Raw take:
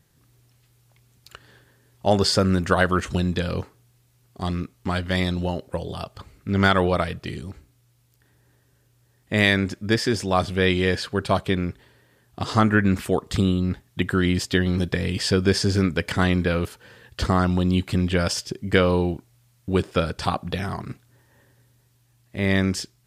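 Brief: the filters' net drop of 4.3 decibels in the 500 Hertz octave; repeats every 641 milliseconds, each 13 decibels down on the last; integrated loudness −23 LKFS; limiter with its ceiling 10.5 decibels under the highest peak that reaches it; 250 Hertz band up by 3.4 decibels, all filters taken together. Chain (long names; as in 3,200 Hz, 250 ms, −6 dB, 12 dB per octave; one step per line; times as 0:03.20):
parametric band 250 Hz +7 dB
parametric band 500 Hz −8.5 dB
brickwall limiter −14.5 dBFS
repeating echo 641 ms, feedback 22%, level −13 dB
level +2.5 dB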